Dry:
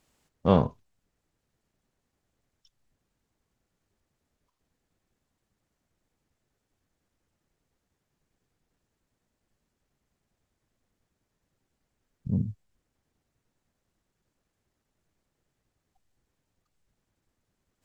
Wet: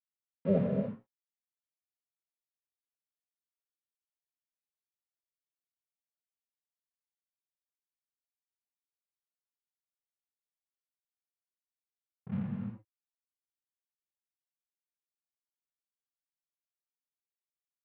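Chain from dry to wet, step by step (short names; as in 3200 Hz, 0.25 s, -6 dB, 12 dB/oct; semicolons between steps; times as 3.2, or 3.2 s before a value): HPF 100 Hz 24 dB/oct; notches 60/120/180/240/300/360/420/480 Hz; spectral gate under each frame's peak -10 dB strong; bell 1900 Hz -12.5 dB 1.6 oct; notch 480 Hz, Q 12; crossover distortion -45 dBFS; LPF 2900 Hz 24 dB/oct; tilt +2 dB/oct; non-linear reverb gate 0.32 s flat, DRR 0 dB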